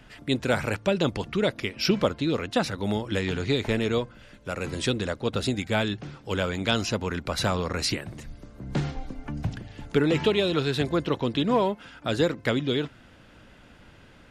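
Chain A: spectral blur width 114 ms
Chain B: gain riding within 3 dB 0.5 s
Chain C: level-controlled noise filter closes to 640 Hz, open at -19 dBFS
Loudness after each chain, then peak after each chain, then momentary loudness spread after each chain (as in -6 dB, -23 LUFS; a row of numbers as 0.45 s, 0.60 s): -30.0 LUFS, -27.5 LUFS, -27.5 LUFS; -12.5 dBFS, -9.0 dBFS, -8.5 dBFS; 10 LU, 7 LU, 10 LU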